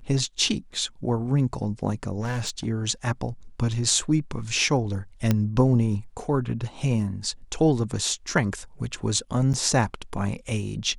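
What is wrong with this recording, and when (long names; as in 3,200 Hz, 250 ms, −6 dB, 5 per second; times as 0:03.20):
0:02.21–0:02.66: clipping −23.5 dBFS
0:05.31: click −8 dBFS
0:09.53–0:09.54: drop-out 8.8 ms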